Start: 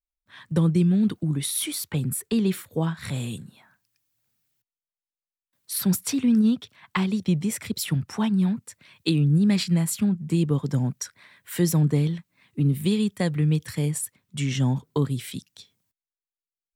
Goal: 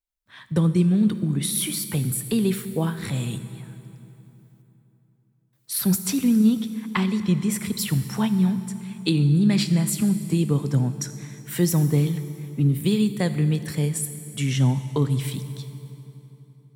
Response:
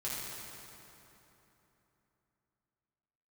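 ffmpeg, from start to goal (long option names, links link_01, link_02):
-filter_complex "[0:a]asplit=2[link_01][link_02];[1:a]atrim=start_sample=2205,highshelf=frequency=8200:gain=10[link_03];[link_02][link_03]afir=irnorm=-1:irlink=0,volume=-13dB[link_04];[link_01][link_04]amix=inputs=2:normalize=0"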